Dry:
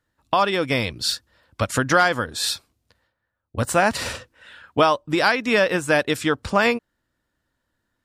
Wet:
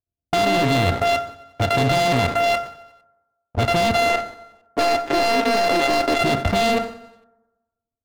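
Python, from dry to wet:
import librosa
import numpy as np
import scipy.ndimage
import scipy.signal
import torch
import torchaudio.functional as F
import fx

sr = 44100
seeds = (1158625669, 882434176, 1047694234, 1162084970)

y = np.r_[np.sort(x[:len(x) // 64 * 64].reshape(-1, 64), axis=1).ravel(), x[len(x) // 64 * 64:]]
y = scipy.signal.sosfilt(scipy.signal.cheby1(10, 1.0, 4200.0, 'lowpass', fs=sr, output='sos'), y)
y = fx.env_lowpass(y, sr, base_hz=380.0, full_db=-18.0)
y = fx.highpass(y, sr, hz=260.0, slope=24, at=(3.96, 6.21))
y = fx.leveller(y, sr, passes=5)
y = fx.level_steps(y, sr, step_db=18)
y = fx.echo_feedback(y, sr, ms=91, feedback_pct=59, wet_db=-21)
y = fx.rev_fdn(y, sr, rt60_s=1.1, lf_ratio=0.95, hf_ratio=0.4, size_ms=66.0, drr_db=12.0)
y = fx.sustainer(y, sr, db_per_s=120.0)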